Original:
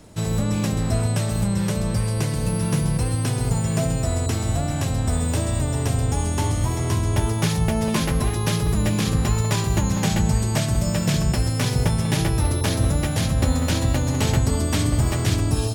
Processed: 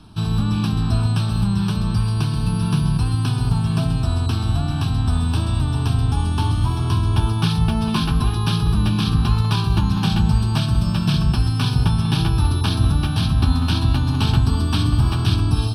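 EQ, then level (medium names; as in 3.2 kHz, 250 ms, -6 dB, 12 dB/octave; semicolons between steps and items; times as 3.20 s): distance through air 74 m; treble shelf 5.3 kHz +8.5 dB; static phaser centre 2 kHz, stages 6; +4.0 dB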